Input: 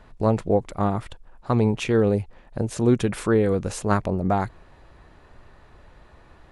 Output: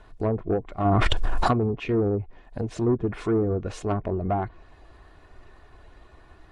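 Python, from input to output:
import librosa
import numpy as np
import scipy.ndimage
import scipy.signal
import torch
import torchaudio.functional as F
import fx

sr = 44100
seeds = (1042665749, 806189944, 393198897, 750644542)

y = fx.spec_quant(x, sr, step_db=15)
y = fx.env_lowpass_down(y, sr, base_hz=650.0, full_db=-16.0)
y = y + 0.37 * np.pad(y, (int(2.8 * sr / 1000.0), 0))[:len(y)]
y = 10.0 ** (-14.0 / 20.0) * np.tanh(y / 10.0 ** (-14.0 / 20.0))
y = fx.env_flatten(y, sr, amount_pct=100, at=(0.84, 1.52), fade=0.02)
y = F.gain(torch.from_numpy(y), -1.5).numpy()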